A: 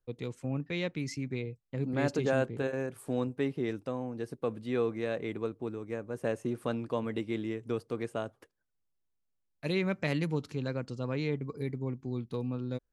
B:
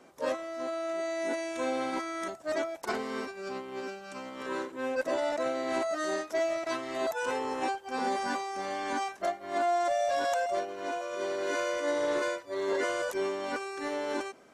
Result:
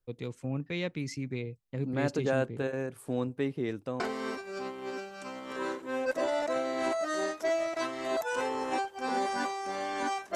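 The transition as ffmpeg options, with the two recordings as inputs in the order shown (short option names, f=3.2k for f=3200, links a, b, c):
-filter_complex "[0:a]apad=whole_dur=10.35,atrim=end=10.35,atrim=end=4.002[a];[1:a]atrim=start=2.898:end=9.25[b];[a][b]acrossfade=d=0.004:c1=hsin:c2=hsin"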